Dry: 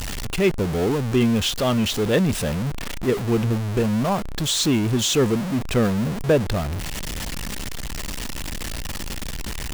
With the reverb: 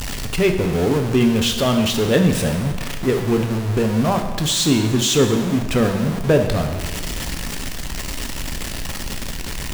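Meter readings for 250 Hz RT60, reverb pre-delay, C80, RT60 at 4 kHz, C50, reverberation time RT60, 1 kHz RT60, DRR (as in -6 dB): 1.4 s, 5 ms, 9.0 dB, 1.2 s, 7.5 dB, 1.3 s, 1.3 s, 4.5 dB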